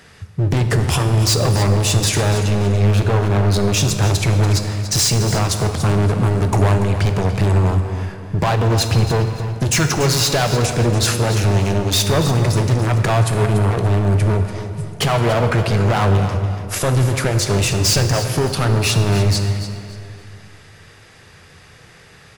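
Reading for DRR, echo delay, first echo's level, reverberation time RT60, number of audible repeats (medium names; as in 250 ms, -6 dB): 5.0 dB, 287 ms, -11.5 dB, 2.5 s, 3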